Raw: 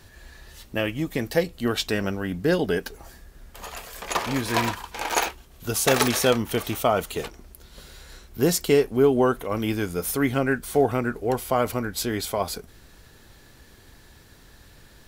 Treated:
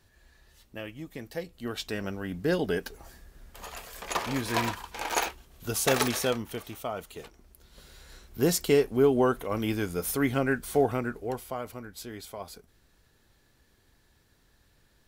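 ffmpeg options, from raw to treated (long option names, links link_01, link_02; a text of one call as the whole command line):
ffmpeg -i in.wav -af "volume=5dB,afade=type=in:start_time=1.39:duration=1.23:silence=0.354813,afade=type=out:start_time=5.93:duration=0.73:silence=0.375837,afade=type=in:start_time=7.25:duration=1.23:silence=0.334965,afade=type=out:start_time=10.77:duration=0.85:silence=0.298538" out.wav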